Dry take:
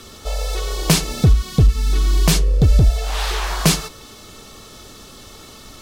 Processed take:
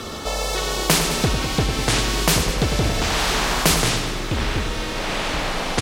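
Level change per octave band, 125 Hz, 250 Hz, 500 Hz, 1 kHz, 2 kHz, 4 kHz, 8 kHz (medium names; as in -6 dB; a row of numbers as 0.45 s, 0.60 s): -6.5 dB, -1.0 dB, +4.0 dB, +5.5 dB, +6.5 dB, +3.5 dB, +2.0 dB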